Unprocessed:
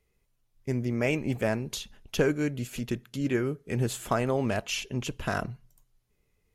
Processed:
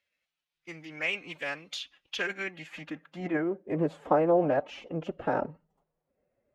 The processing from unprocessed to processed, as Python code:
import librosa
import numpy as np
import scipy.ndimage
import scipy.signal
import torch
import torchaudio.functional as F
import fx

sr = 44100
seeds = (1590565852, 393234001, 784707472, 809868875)

y = fx.pitch_keep_formants(x, sr, semitones=4.5)
y = fx.filter_sweep_bandpass(y, sr, from_hz=3200.0, to_hz=570.0, start_s=2.17, end_s=3.64, q=1.3)
y = fx.high_shelf(y, sr, hz=4100.0, db=-10.5)
y = y * librosa.db_to_amplitude(7.5)